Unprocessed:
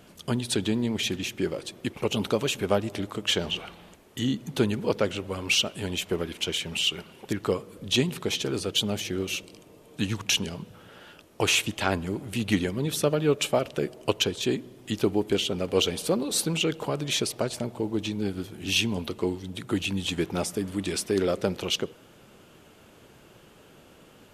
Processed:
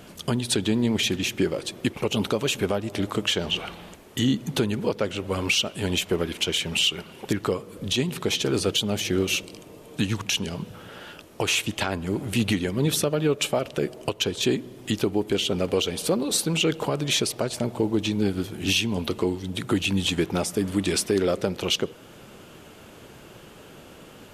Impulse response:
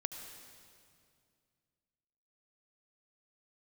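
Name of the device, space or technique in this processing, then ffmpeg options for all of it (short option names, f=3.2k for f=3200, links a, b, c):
stacked limiters: -af "alimiter=limit=-13.5dB:level=0:latency=1:release=340,alimiter=limit=-19dB:level=0:latency=1:release=400,volume=7dB"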